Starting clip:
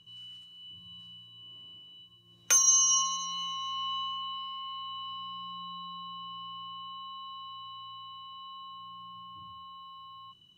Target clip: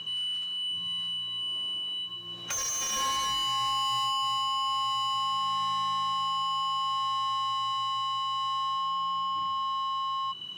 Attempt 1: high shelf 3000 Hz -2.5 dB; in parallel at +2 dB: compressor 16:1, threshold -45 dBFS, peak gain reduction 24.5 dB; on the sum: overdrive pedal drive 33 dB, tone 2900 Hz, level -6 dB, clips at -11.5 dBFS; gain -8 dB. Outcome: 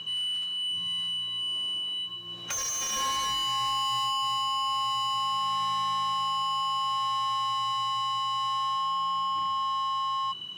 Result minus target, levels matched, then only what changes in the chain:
compressor: peak gain reduction -9.5 dB
change: compressor 16:1, threshold -55 dBFS, peak gain reduction 34 dB

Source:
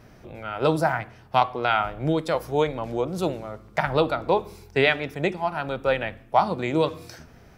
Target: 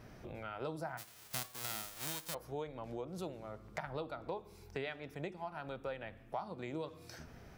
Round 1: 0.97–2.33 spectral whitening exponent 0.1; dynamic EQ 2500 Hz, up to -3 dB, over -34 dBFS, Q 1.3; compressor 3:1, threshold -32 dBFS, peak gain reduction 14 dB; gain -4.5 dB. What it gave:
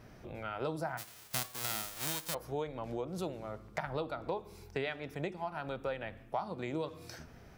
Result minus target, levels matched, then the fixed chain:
compressor: peak gain reduction -4.5 dB
0.97–2.33 spectral whitening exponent 0.1; dynamic EQ 2500 Hz, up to -3 dB, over -34 dBFS, Q 1.3; compressor 3:1, threshold -39 dBFS, peak gain reduction 18.5 dB; gain -4.5 dB

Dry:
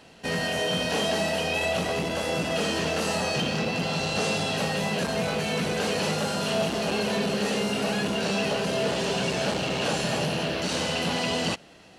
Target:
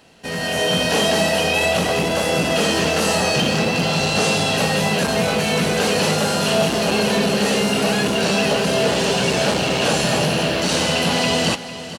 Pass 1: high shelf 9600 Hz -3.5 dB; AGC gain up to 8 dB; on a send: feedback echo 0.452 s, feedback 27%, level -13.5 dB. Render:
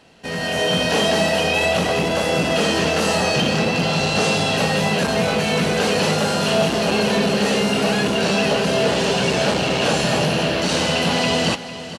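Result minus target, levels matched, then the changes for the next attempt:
8000 Hz band -2.5 dB
change: high shelf 9600 Hz +6.5 dB

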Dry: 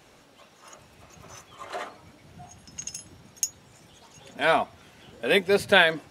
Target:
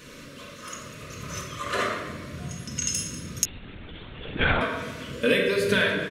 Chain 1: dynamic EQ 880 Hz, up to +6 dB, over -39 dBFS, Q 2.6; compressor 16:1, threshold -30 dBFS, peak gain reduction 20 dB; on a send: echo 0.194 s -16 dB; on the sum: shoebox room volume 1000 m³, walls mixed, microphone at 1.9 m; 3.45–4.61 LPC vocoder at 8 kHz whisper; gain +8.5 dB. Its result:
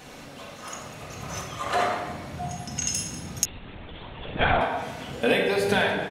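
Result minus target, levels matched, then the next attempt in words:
1000 Hz band +5.5 dB
dynamic EQ 880 Hz, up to +6 dB, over -39 dBFS, Q 2.6; Butterworth band-stop 790 Hz, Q 1.8; compressor 16:1, threshold -30 dBFS, peak gain reduction 18 dB; on a send: echo 0.194 s -16 dB; on the sum: shoebox room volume 1000 m³, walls mixed, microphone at 1.9 m; 3.45–4.61 LPC vocoder at 8 kHz whisper; gain +8.5 dB

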